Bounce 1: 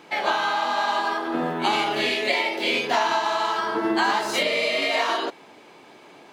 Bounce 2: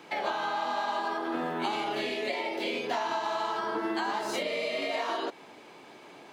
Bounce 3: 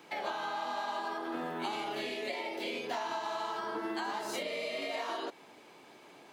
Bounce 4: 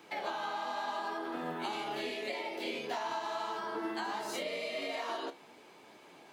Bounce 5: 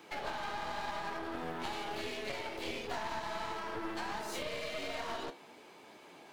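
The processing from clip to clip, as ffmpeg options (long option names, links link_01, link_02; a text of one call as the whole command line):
ffmpeg -i in.wav -filter_complex "[0:a]acrossover=split=160|910[link_01][link_02][link_03];[link_01]acompressor=threshold=-58dB:ratio=4[link_04];[link_02]acompressor=threshold=-29dB:ratio=4[link_05];[link_03]acompressor=threshold=-34dB:ratio=4[link_06];[link_04][link_05][link_06]amix=inputs=3:normalize=0,volume=-2dB" out.wav
ffmpeg -i in.wav -af "highshelf=frequency=8300:gain=7.5,volume=-5.5dB" out.wav
ffmpeg -i in.wav -af "flanger=delay=8.9:depth=6:regen=67:speed=0.85:shape=triangular,volume=3.5dB" out.wav
ffmpeg -i in.wav -af "aeval=exprs='clip(val(0),-1,0.00447)':channel_layout=same,volume=1dB" out.wav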